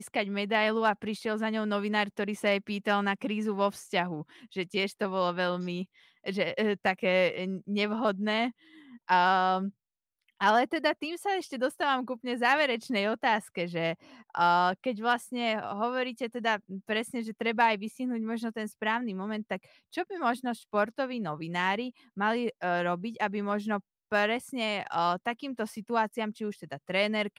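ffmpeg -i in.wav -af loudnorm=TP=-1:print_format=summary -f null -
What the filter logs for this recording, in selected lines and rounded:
Input Integrated:    -29.9 LUFS
Input True Peak:     -12.5 dBTP
Input LRA:             3.3 LU
Input Threshold:     -40.1 LUFS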